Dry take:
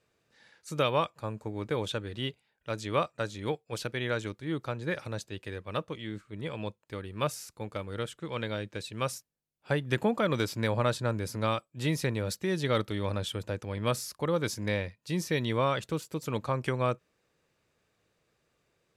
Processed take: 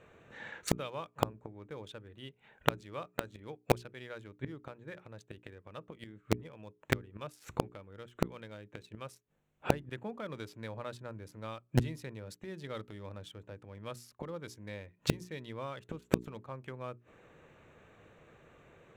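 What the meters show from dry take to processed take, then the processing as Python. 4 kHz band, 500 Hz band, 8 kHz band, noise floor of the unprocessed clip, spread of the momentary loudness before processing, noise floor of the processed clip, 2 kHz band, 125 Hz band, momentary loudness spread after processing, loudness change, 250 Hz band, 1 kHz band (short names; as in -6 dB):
-9.0 dB, -8.0 dB, -7.5 dB, -76 dBFS, 11 LU, -72 dBFS, -7.5 dB, -7.0 dB, 16 LU, -7.0 dB, -6.0 dB, -7.0 dB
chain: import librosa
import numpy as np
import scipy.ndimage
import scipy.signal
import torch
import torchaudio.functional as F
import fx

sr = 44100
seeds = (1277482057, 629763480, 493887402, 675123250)

p1 = fx.wiener(x, sr, points=9)
p2 = fx.gate_flip(p1, sr, shuts_db=-32.0, range_db=-30)
p3 = fx.hum_notches(p2, sr, base_hz=60, count=7)
p4 = fx.quant_dither(p3, sr, seeds[0], bits=6, dither='none')
p5 = p3 + (p4 * librosa.db_to_amplitude(-3.0))
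y = p5 * librosa.db_to_amplitude(16.5)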